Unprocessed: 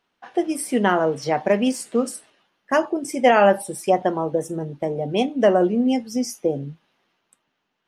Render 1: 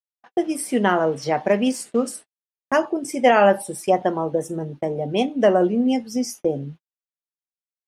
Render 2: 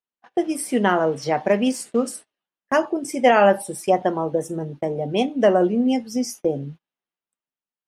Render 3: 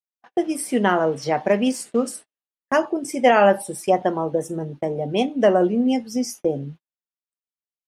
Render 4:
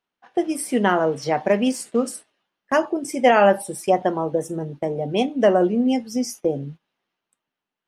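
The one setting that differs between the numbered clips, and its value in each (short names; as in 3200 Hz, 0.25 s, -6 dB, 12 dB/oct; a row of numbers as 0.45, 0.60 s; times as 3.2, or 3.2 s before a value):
gate, range: -59, -25, -40, -11 dB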